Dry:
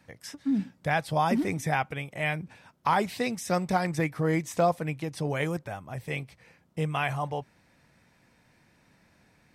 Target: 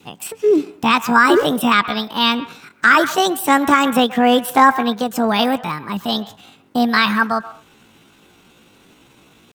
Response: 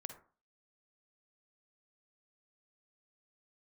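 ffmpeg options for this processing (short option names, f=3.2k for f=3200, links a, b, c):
-filter_complex "[0:a]acontrast=41,adynamicequalizer=threshold=0.0126:dfrequency=1000:dqfactor=3.6:tfrequency=1000:tqfactor=3.6:attack=5:release=100:ratio=0.375:range=3.5:mode=boostabove:tftype=bell,asetrate=68011,aresample=44100,atempo=0.64842,asplit=2[a][b];[b]highpass=640,lowpass=2.5k[c];[1:a]atrim=start_sample=2205,afade=t=out:st=0.16:d=0.01,atrim=end_sample=7497,adelay=129[d];[c][d]afir=irnorm=-1:irlink=0,volume=-9.5dB[e];[a][e]amix=inputs=2:normalize=0,alimiter=level_in=8dB:limit=-1dB:release=50:level=0:latency=1,volume=-1dB"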